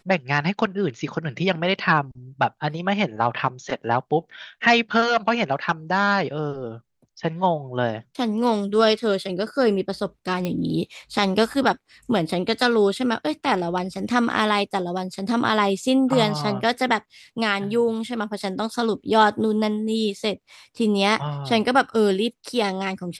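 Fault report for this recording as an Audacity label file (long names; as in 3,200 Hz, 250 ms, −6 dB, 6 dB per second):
10.450000	10.450000	click −13 dBFS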